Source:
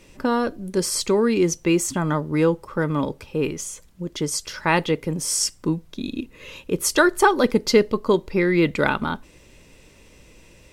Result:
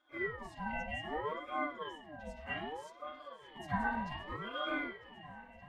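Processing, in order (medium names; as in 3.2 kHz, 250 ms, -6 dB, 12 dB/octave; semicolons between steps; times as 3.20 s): block-companded coder 5-bit; tilt EQ +3.5 dB/octave; reverberation RT60 1.2 s, pre-delay 58 ms, DRR -3 dB; plain phase-vocoder stretch 0.53×; peaking EQ 1.8 kHz +6.5 dB 1.1 oct; band-stop 5.4 kHz, Q 15; pitch-class resonator D, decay 0.27 s; shuffle delay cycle 952 ms, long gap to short 1.5:1, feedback 47%, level -16 dB; ring modulator with a swept carrier 630 Hz, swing 45%, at 0.64 Hz; trim +1 dB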